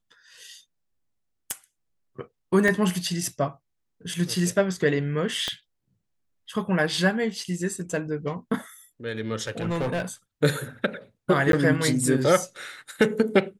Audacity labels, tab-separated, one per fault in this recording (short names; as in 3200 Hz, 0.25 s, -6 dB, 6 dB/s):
1.510000	1.510000	pop -11 dBFS
2.680000	2.680000	gap 3.2 ms
5.480000	5.480000	pop -14 dBFS
9.470000	10.020000	clipped -22.5 dBFS
11.520000	11.530000	gap 12 ms